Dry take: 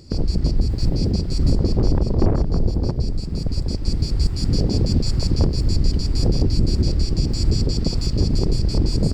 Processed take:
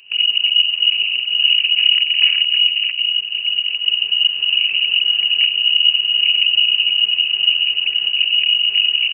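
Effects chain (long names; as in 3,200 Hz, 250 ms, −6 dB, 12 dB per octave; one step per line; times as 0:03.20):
comb filter 3.3 ms, depth 38%
on a send: single-tap delay 793 ms −22 dB
on the sum: voice inversion scrambler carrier 2,900 Hz
level −1.5 dB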